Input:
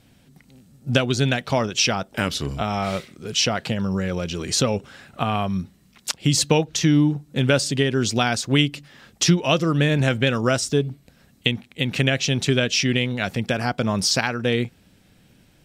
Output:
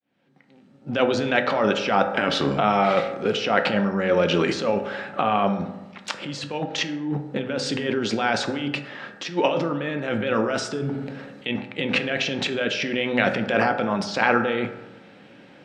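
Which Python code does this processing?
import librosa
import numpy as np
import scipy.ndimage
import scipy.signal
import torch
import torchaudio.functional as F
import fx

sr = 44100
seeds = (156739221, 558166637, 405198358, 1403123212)

y = fx.fade_in_head(x, sr, length_s=1.8)
y = fx.over_compress(y, sr, threshold_db=-27.0, ratio=-1.0)
y = fx.bandpass_edges(y, sr, low_hz=290.0, high_hz=2500.0)
y = fx.rev_fdn(y, sr, rt60_s=1.1, lf_ratio=1.0, hf_ratio=0.4, size_ms=11.0, drr_db=5.5)
y = fx.sustainer(y, sr, db_per_s=37.0, at=(10.75, 11.5))
y = y * librosa.db_to_amplitude(7.0)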